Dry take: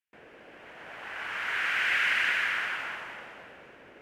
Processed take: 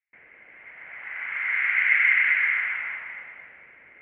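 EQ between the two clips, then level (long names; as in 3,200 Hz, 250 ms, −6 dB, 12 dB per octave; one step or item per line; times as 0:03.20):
transistor ladder low-pass 2,200 Hz, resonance 85%
high-frequency loss of the air 140 metres
parametric band 360 Hz −6 dB 2.3 octaves
+8.0 dB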